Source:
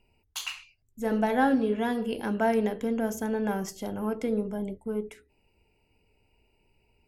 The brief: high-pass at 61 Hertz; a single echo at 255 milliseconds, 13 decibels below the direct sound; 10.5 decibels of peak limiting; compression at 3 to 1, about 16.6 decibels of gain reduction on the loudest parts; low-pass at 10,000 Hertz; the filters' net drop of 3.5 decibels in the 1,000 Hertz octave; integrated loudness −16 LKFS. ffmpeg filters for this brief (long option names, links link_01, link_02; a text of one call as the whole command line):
ffmpeg -i in.wav -af "highpass=61,lowpass=10000,equalizer=frequency=1000:width_type=o:gain=-5,acompressor=threshold=-44dB:ratio=3,alimiter=level_in=12.5dB:limit=-24dB:level=0:latency=1,volume=-12.5dB,aecho=1:1:255:0.224,volume=29.5dB" out.wav